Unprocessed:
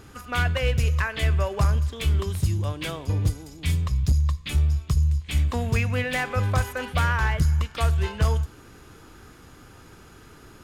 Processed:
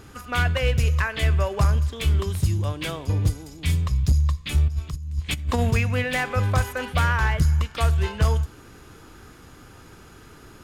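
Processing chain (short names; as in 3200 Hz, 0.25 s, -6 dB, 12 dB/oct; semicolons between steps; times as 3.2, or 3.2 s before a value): 4.68–5.71 negative-ratio compressor -25 dBFS, ratio -0.5; gain +1.5 dB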